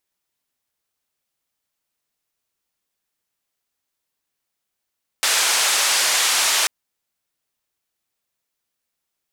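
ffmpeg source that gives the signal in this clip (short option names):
-f lavfi -i "anoisesrc=c=white:d=1.44:r=44100:seed=1,highpass=f=720,lowpass=f=8200,volume=-9.1dB"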